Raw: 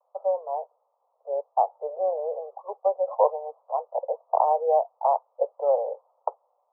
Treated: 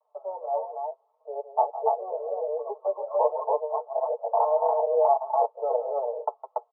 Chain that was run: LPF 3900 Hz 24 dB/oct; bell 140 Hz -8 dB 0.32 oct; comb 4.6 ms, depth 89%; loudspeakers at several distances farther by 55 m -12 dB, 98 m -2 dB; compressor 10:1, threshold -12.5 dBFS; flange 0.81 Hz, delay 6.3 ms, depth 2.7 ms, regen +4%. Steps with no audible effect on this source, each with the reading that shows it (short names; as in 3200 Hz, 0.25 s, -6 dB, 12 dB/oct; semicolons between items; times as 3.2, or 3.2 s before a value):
LPF 3900 Hz: input band ends at 1200 Hz; bell 140 Hz: input band starts at 360 Hz